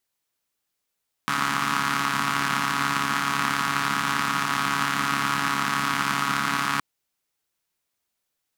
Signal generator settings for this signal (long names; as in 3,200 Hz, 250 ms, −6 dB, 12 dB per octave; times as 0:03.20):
pulse-train model of a four-cylinder engine, steady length 5.52 s, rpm 4,200, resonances 220/1,200 Hz